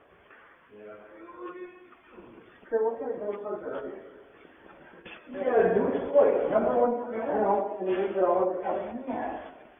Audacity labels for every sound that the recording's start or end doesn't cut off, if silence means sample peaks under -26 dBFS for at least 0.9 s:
2.730000	3.770000	sound